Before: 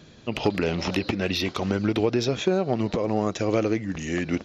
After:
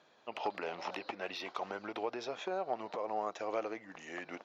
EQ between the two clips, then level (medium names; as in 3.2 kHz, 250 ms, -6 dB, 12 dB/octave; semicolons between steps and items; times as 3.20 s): band-pass filter 830 Hz, Q 1.7; tilt EQ +3 dB/octave; -3.5 dB